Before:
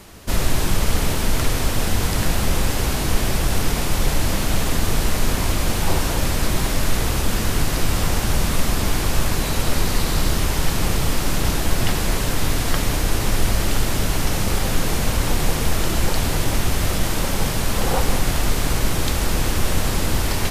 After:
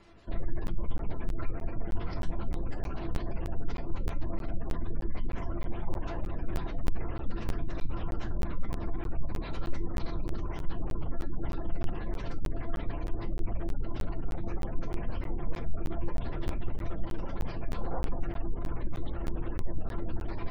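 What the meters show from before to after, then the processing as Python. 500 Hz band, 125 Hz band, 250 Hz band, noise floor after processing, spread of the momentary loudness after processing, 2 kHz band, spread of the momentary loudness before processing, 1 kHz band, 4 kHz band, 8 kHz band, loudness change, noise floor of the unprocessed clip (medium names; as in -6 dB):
-14.5 dB, -14.5 dB, -13.5 dB, -37 dBFS, 2 LU, -22.0 dB, 1 LU, -17.0 dB, -28.5 dB, -37.0 dB, -16.0 dB, -23 dBFS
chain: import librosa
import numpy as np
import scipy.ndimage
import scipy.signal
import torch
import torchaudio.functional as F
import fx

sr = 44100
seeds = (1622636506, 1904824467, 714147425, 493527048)

y = fx.high_shelf(x, sr, hz=7200.0, db=-9.5)
y = fx.spec_gate(y, sr, threshold_db=-25, keep='strong')
y = fx.comb_fb(y, sr, f0_hz=340.0, decay_s=0.17, harmonics='all', damping=0.0, mix_pct=80)
y = fx.buffer_crackle(y, sr, first_s=0.67, period_s=0.31, block=512, kind='zero')
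y = fx.doppler_dist(y, sr, depth_ms=0.42)
y = y * librosa.db_to_amplitude(-3.0)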